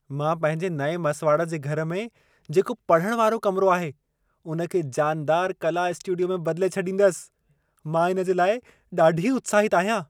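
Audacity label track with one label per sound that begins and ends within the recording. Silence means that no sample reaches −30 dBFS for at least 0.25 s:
2.500000	3.900000	sound
4.480000	7.210000	sound
7.860000	8.580000	sound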